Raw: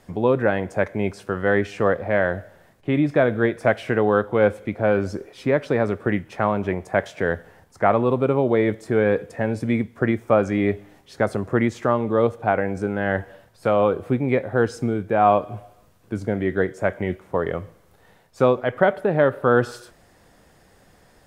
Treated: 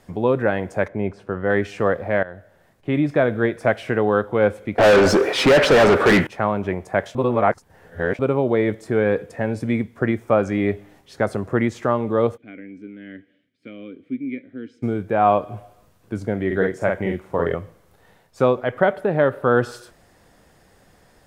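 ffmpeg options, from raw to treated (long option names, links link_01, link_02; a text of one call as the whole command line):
ffmpeg -i in.wav -filter_complex "[0:a]asettb=1/sr,asplit=3[link_01][link_02][link_03];[link_01]atrim=end=0.884[link_04];[link_02]atrim=start=0.88:end=1.5,asetpts=PTS-STARTPTS,afade=type=in:duration=0.004:curve=qsin,afade=type=out:start_time=0.616:duration=0.004:curve=qsin,lowpass=frequency=1300:poles=1[link_05];[link_03]atrim=start=1.496[link_06];[link_04][link_05]acrossfade=duration=0.004:curve1=hsin:curve2=qsin[link_07];[link_07][link_06]acrossfade=duration=0.004:curve1=qsin:curve2=hsin,asettb=1/sr,asplit=3[link_08][link_09][link_10];[link_08]atrim=end=4.784[link_11];[link_09]atrim=start=4.78:end=6.27,asetpts=PTS-STARTPTS,afade=type=in:duration=0.004:curve=qsin,afade=type=out:start_time=1.486:duration=0.004:curve=qsin,asplit=2[link_12][link_13];[link_13]highpass=frequency=720:poles=1,volume=35dB,asoftclip=type=tanh:threshold=-5.5dB[link_14];[link_12][link_14]amix=inputs=2:normalize=0,lowpass=frequency=2700:poles=1,volume=-6dB[link_15];[link_10]atrim=start=6.266[link_16];[link_11][link_15]acrossfade=duration=0.004:curve1=hsin:curve2=qsin[link_17];[link_17][link_16]acrossfade=duration=0.004:curve1=qsin:curve2=hsin,asplit=3[link_18][link_19][link_20];[link_18]afade=type=out:start_time=12.36:duration=0.02[link_21];[link_19]asplit=3[link_22][link_23][link_24];[link_22]bandpass=frequency=270:width_type=q:width=8,volume=0dB[link_25];[link_23]bandpass=frequency=2290:width_type=q:width=8,volume=-6dB[link_26];[link_24]bandpass=frequency=3010:width_type=q:width=8,volume=-9dB[link_27];[link_25][link_26][link_27]amix=inputs=3:normalize=0,afade=type=in:start_time=12.36:duration=0.02,afade=type=out:start_time=14.82:duration=0.02[link_28];[link_20]afade=type=in:start_time=14.82:duration=0.02[link_29];[link_21][link_28][link_29]amix=inputs=3:normalize=0,asettb=1/sr,asplit=3[link_30][link_31][link_32];[link_30]atrim=end=16.464[link_33];[link_31]atrim=start=16.46:end=17.55,asetpts=PTS-STARTPTS,afade=type=in:duration=0.004:curve=qsin,afade=type=out:start_time=1.086:duration=0.004:curve=qsin,asplit=2[link_34][link_35];[link_35]adelay=47,volume=-3dB[link_36];[link_34][link_36]amix=inputs=2:normalize=0,atrim=end_sample=48069[link_37];[link_32]atrim=start=17.546[link_38];[link_33][link_37]acrossfade=duration=0.004:curve1=hsin:curve2=qsin[link_39];[link_39][link_38]acrossfade=duration=0.004:curve1=qsin:curve2=hsin,asplit=4[link_40][link_41][link_42][link_43];[link_40]atrim=end=2.23,asetpts=PTS-STARTPTS,afade=type=out:start_time=2.226:duration=0.004:curve=hsin:silence=0.141254[link_44];[link_41]atrim=start=2.23:end=7.152,asetpts=PTS-STARTPTS,afade=type=in:duration=0.71:silence=0.141254[link_45];[link_42]atrim=start=7.148:end=8.192,asetpts=PTS-STARTPTS,areverse[link_46];[link_43]atrim=start=8.188[link_47];[link_44][link_45]concat=n=2:v=0:a=1[link_48];[link_48][link_46]acrossfade=duration=0.004:curve1=hsin:curve2=hsin[link_49];[link_49][link_47]acrossfade=duration=0.004:curve1=hsin:curve2=hsin" out.wav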